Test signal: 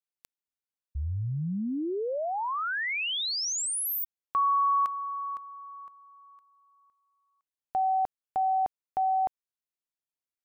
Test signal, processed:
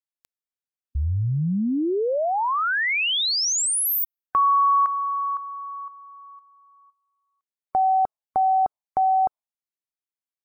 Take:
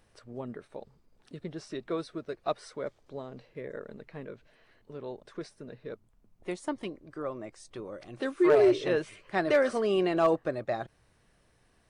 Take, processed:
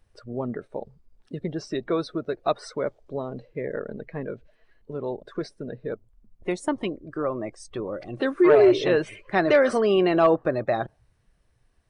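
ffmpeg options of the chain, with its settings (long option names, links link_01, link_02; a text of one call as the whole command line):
ffmpeg -i in.wav -filter_complex "[0:a]asplit=2[link_01][link_02];[link_02]acompressor=threshold=-36dB:ratio=6:attack=21:release=42:knee=6,volume=0dB[link_03];[link_01][link_03]amix=inputs=2:normalize=0,afftdn=noise_reduction=16:noise_floor=-46,volume=4dB" out.wav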